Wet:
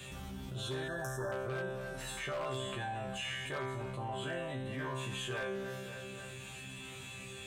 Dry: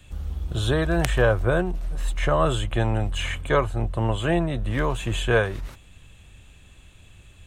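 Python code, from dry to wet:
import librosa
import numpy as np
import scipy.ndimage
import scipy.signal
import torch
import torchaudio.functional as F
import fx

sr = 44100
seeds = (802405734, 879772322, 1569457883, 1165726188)

y = scipy.signal.sosfilt(scipy.signal.butter(2, 110.0, 'highpass', fs=sr, output='sos'), x)
y = fx.peak_eq(y, sr, hz=620.0, db=-2.0, octaves=1.1)
y = fx.resonator_bank(y, sr, root=48, chord='fifth', decay_s=0.67)
y = 10.0 ** (-34.0 / 20.0) * (np.abs((y / 10.0 ** (-34.0 / 20.0) + 3.0) % 4.0 - 2.0) - 1.0)
y = fx.brickwall_bandstop(y, sr, low_hz=1800.0, high_hz=5200.0, at=(0.88, 1.32))
y = fx.echo_feedback(y, sr, ms=277, feedback_pct=39, wet_db=-19.5)
y = fx.env_flatten(y, sr, amount_pct=70)
y = y * librosa.db_to_amplitude(1.5)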